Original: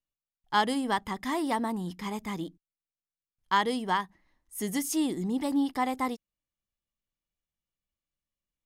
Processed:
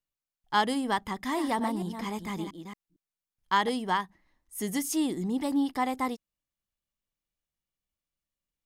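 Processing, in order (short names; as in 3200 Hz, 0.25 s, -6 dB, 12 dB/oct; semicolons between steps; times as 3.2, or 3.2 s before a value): 1.14–3.69 reverse delay 0.228 s, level -8 dB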